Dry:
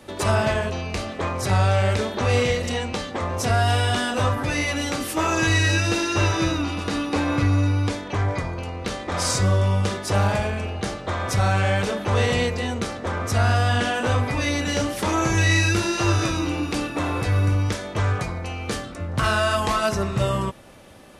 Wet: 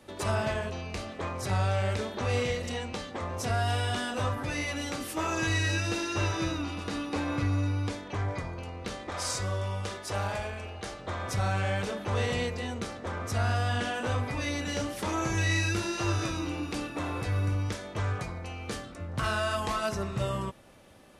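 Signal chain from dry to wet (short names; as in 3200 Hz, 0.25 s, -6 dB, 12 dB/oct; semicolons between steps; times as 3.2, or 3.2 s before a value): 9.1–10.99 bell 170 Hz -8.5 dB 1.8 oct; gain -8.5 dB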